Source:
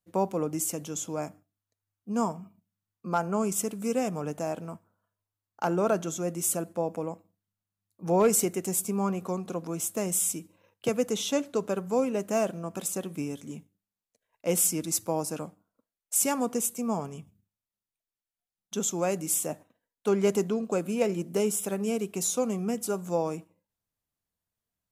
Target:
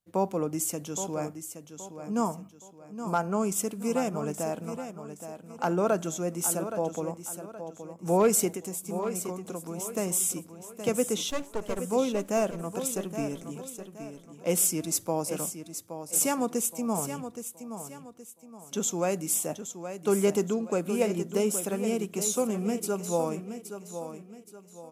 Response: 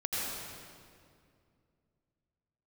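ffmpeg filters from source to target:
-filter_complex "[0:a]asettb=1/sr,asplit=3[a][b][c];[a]atrim=end=8.514[d];[b]atrim=start=8.51:end=9.95,asetpts=PTS-STARTPTS,afade=t=in:d=0.004:c=qsin,afade=t=out:st=1.436:d=0.004:c=qsin,acompressor=threshold=-33dB:ratio=6[e];[c]atrim=start=9.946[f];[d][e]acrossfade=d=0.004:c1=hsin:c2=qsin[g];[g][f]acrossfade=d=0.004:c1=qsin:c2=hsin,asettb=1/sr,asplit=3[h][i][j];[h]atrim=end=11.304[k];[i]atrim=start=11.3:end=11.79,asetpts=PTS-STARTPTS,afade=t=in:d=0.004:c=qsin,afade=t=out:st=0.486:d=0.004:c=qsin,aeval=exprs='max(val(0),0)':c=same[l];[j]atrim=start=11.786[m];[k][l]acrossfade=d=0.004:c1=hsin:c2=qsin[n];[n][m]acrossfade=d=0.004:c1=qsin:c2=hsin,aecho=1:1:821|1642|2463|3284:0.316|0.114|0.041|0.0148"

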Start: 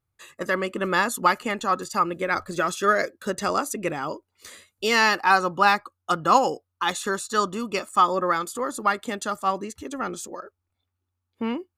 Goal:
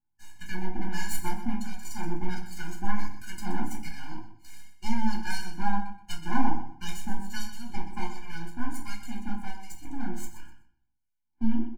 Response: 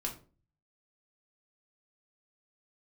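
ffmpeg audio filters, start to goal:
-filter_complex "[0:a]lowshelf=f=190:g=-12,acrossover=split=670|2500[a][b][c];[b]acompressor=threshold=-35dB:ratio=6[d];[a][d][c]amix=inputs=3:normalize=0,acrossover=split=1300[e][f];[e]aeval=exprs='val(0)*(1-1/2+1/2*cos(2*PI*1.4*n/s))':c=same[g];[f]aeval=exprs='val(0)*(1-1/2-1/2*cos(2*PI*1.4*n/s))':c=same[h];[g][h]amix=inputs=2:normalize=0,aeval=exprs='max(val(0),0)':c=same,asuperstop=centerf=3500:order=4:qfactor=5.8,aecho=1:1:125|250|375:0.251|0.0553|0.0122[i];[1:a]atrim=start_sample=2205,asetrate=39249,aresample=44100[j];[i][j]afir=irnorm=-1:irlink=0,afftfilt=real='re*eq(mod(floor(b*sr/1024/350),2),0)':imag='im*eq(mod(floor(b*sr/1024/350),2),0)':win_size=1024:overlap=0.75,volume=3dB"

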